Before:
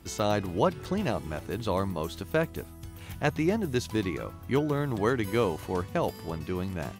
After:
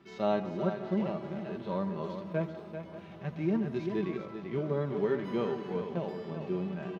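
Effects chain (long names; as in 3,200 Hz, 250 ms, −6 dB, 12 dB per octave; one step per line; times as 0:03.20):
in parallel at −6.5 dB: floating-point word with a short mantissa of 2 bits
on the sum: high-pass filter 170 Hz 12 dB per octave
high-frequency loss of the air 240 metres
single-tap delay 390 ms −9 dB
harmonic and percussive parts rebalanced percussive −17 dB
comb filter 5.1 ms, depth 59%
on a send at −14 dB: convolution reverb RT60 0.80 s, pre-delay 107 ms
on the sum: feedback echo with a swinging delay time 578 ms, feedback 74%, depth 68 cents, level −18 dB
level −4 dB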